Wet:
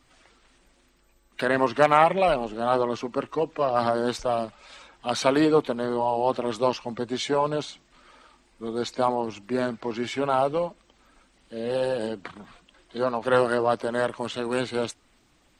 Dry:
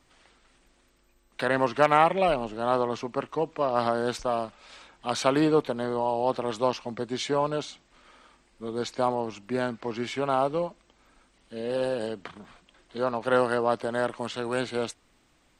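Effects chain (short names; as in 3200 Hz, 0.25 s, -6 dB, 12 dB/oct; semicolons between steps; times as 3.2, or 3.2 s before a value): bin magnitudes rounded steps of 15 dB; gain +2.5 dB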